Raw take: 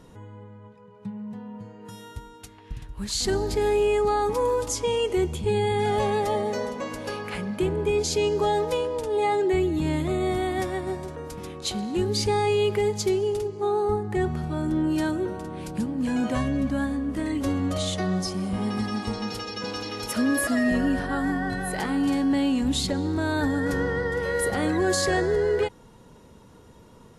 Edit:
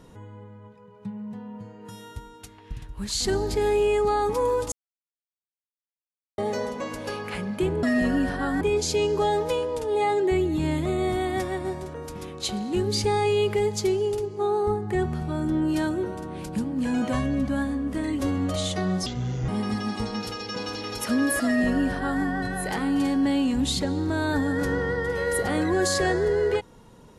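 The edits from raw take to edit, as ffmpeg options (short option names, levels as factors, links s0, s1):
-filter_complex "[0:a]asplit=7[s0][s1][s2][s3][s4][s5][s6];[s0]atrim=end=4.72,asetpts=PTS-STARTPTS,afade=t=out:st=4.716:d=0.004:c=hsin[s7];[s1]atrim=start=4.72:end=6.38,asetpts=PTS-STARTPTS,volume=0[s8];[s2]atrim=start=6.38:end=7.832,asetpts=PTS-STARTPTS,afade=t=in:d=0.004:c=hsin[s9];[s3]atrim=start=20.528:end=21.312[s10];[s4]atrim=start=7.828:end=18.284[s11];[s5]atrim=start=18.28:end=18.56,asetpts=PTS-STARTPTS,asetrate=29106,aresample=44100,atrim=end_sample=18709,asetpts=PTS-STARTPTS[s12];[s6]atrim=start=18.556[s13];[s7][s8][s9]concat=n=3:v=0:a=1[s14];[s14][s10]acrossfade=d=0.004:c1=hsin:c2=hsin[s15];[s15][s11]acrossfade=d=0.004:c1=hsin:c2=hsin[s16];[s16][s12]acrossfade=d=0.004:c1=hsin:c2=hsin[s17];[s17][s13]acrossfade=d=0.004:c1=hsin:c2=hsin"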